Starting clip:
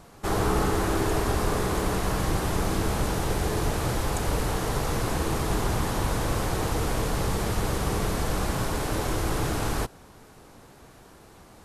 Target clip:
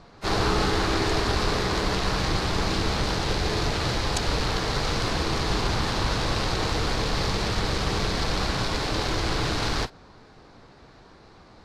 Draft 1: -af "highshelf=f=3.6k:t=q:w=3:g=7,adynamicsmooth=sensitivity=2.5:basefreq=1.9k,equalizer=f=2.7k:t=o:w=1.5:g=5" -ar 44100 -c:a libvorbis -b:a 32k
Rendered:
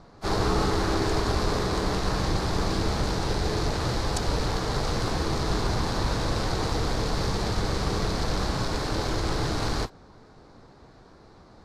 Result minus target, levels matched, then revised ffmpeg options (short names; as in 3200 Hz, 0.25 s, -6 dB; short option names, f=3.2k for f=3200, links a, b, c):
2000 Hz band -3.0 dB
-af "highshelf=f=3.6k:t=q:w=3:g=7,adynamicsmooth=sensitivity=2.5:basefreq=1.9k,equalizer=f=2.7k:t=o:w=1.5:g=13" -ar 44100 -c:a libvorbis -b:a 32k